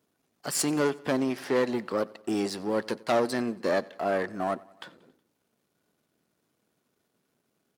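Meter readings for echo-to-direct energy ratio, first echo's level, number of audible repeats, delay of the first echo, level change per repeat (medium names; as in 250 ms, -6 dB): -21.5 dB, -23.0 dB, 3, 92 ms, -5.0 dB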